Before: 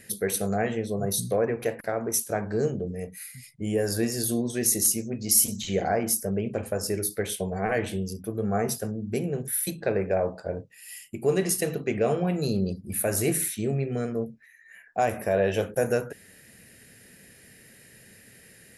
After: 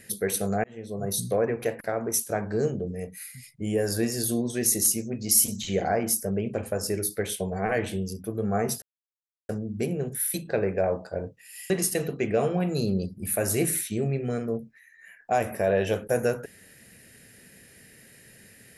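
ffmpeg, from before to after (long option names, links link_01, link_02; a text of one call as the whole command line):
ffmpeg -i in.wav -filter_complex "[0:a]asplit=4[link_01][link_02][link_03][link_04];[link_01]atrim=end=0.64,asetpts=PTS-STARTPTS,afade=type=out:start_time=0.636:duration=0.004:curve=hsin[link_05];[link_02]atrim=start=0.64:end=8.82,asetpts=PTS-STARTPTS,afade=type=in:duration=0.75:curve=qsin,afade=type=out:start_time=8.176:duration=0.004:curve=hsin,apad=pad_dur=0.67[link_06];[link_03]atrim=start=8.82:end=11.032,asetpts=PTS-STARTPTS,afade=type=in:duration=0.004:curve=hsin[link_07];[link_04]atrim=start=11.368[link_08];[link_05][link_06][link_07]concat=n=3:v=0:a=1[link_09];[link_09][link_08]acrossfade=duration=0.004:curve1=hsin:curve2=hsin" out.wav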